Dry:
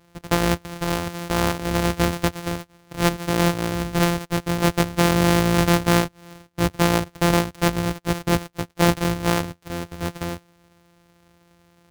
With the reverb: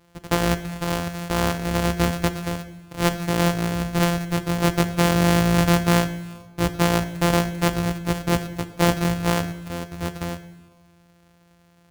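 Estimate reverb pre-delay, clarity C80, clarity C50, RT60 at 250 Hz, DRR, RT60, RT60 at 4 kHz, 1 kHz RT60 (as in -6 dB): 9 ms, 14.5 dB, 13.0 dB, 1.6 s, 11.0 dB, 1.3 s, 1.1 s, 1.2 s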